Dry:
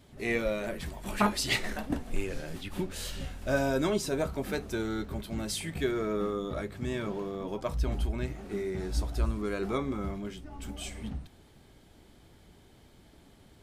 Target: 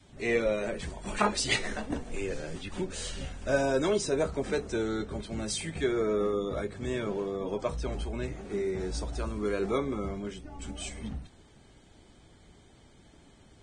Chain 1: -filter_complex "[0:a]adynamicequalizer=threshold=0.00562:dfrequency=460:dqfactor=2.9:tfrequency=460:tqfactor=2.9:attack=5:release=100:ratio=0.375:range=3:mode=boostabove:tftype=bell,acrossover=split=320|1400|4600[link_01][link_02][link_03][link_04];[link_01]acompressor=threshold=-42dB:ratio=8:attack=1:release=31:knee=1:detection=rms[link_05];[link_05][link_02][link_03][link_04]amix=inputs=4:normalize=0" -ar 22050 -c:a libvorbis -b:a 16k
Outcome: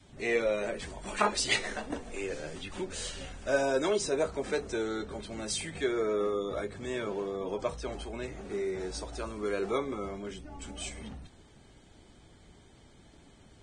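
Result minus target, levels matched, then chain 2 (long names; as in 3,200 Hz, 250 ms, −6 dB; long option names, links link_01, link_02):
downward compressor: peak gain reduction +9 dB
-filter_complex "[0:a]adynamicequalizer=threshold=0.00562:dfrequency=460:dqfactor=2.9:tfrequency=460:tqfactor=2.9:attack=5:release=100:ratio=0.375:range=3:mode=boostabove:tftype=bell,acrossover=split=320|1400|4600[link_01][link_02][link_03][link_04];[link_01]acompressor=threshold=-31.5dB:ratio=8:attack=1:release=31:knee=1:detection=rms[link_05];[link_05][link_02][link_03][link_04]amix=inputs=4:normalize=0" -ar 22050 -c:a libvorbis -b:a 16k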